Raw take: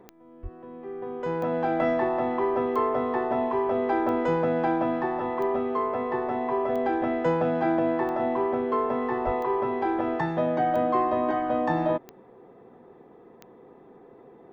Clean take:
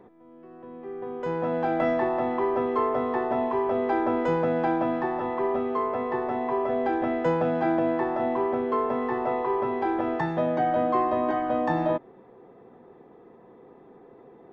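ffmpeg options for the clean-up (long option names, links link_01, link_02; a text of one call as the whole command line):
ffmpeg -i in.wav -filter_complex "[0:a]adeclick=threshold=4,asplit=3[link_01][link_02][link_03];[link_01]afade=type=out:start_time=0.42:duration=0.02[link_04];[link_02]highpass=frequency=140:width=0.5412,highpass=frequency=140:width=1.3066,afade=type=in:start_time=0.42:duration=0.02,afade=type=out:start_time=0.54:duration=0.02[link_05];[link_03]afade=type=in:start_time=0.54:duration=0.02[link_06];[link_04][link_05][link_06]amix=inputs=3:normalize=0,asplit=3[link_07][link_08][link_09];[link_07]afade=type=out:start_time=9.25:duration=0.02[link_10];[link_08]highpass=frequency=140:width=0.5412,highpass=frequency=140:width=1.3066,afade=type=in:start_time=9.25:duration=0.02,afade=type=out:start_time=9.37:duration=0.02[link_11];[link_09]afade=type=in:start_time=9.37:duration=0.02[link_12];[link_10][link_11][link_12]amix=inputs=3:normalize=0" out.wav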